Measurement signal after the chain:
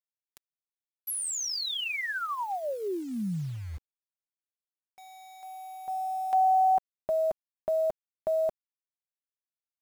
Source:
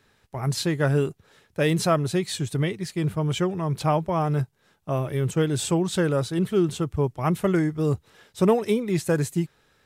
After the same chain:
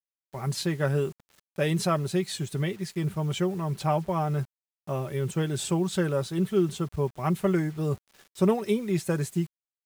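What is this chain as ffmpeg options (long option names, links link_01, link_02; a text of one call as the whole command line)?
ffmpeg -i in.wav -af "aecho=1:1:5.2:0.4,acrusher=bits=7:mix=0:aa=0.000001,volume=-4.5dB" out.wav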